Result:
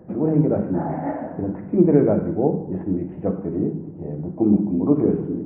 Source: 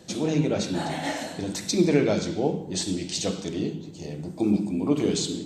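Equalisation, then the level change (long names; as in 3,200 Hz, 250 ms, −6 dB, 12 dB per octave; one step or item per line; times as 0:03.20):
Gaussian smoothing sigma 7.2 samples
+6.0 dB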